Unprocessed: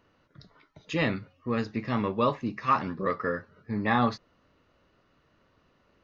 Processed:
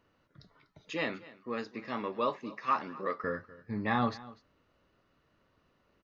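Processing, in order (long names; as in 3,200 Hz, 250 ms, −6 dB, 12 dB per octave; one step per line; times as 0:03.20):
0:00.91–0:03.24: high-pass filter 290 Hz 12 dB per octave
single-tap delay 245 ms −19.5 dB
level −5 dB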